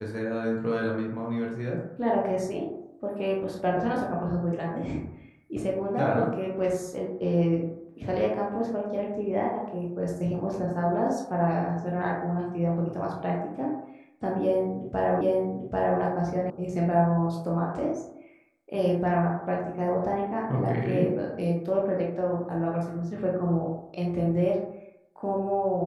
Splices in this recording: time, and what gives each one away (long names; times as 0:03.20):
0:15.21: the same again, the last 0.79 s
0:16.50: cut off before it has died away